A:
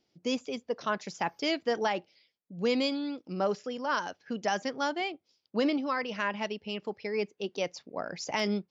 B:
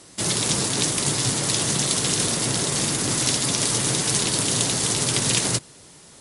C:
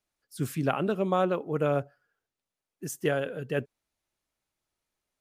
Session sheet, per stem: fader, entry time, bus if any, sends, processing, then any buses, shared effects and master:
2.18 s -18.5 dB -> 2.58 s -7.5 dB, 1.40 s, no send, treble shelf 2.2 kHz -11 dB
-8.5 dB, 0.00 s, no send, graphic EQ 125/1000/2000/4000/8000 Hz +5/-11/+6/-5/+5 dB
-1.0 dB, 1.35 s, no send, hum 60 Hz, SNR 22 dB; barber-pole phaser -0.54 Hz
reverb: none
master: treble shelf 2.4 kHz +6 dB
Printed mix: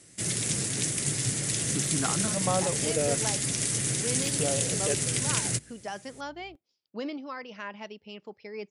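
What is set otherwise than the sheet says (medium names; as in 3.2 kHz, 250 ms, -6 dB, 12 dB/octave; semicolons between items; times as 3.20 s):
stem A: missing treble shelf 2.2 kHz -11 dB; master: missing treble shelf 2.4 kHz +6 dB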